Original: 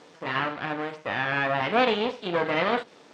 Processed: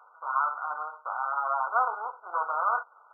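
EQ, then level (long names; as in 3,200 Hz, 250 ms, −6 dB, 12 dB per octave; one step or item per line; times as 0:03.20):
high-pass filter 1,000 Hz 24 dB per octave
linear-phase brick-wall low-pass 1,500 Hz
+6.0 dB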